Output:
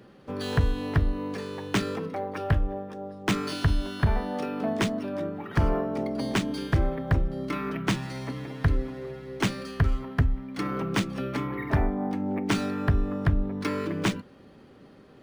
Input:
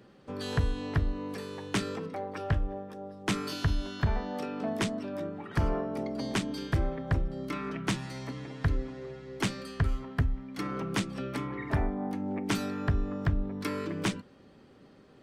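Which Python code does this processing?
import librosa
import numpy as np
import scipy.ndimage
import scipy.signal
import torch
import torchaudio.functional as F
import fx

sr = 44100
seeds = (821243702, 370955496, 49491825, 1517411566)

y = np.interp(np.arange(len(x)), np.arange(len(x))[::3], x[::3])
y = F.gain(torch.from_numpy(y), 4.5).numpy()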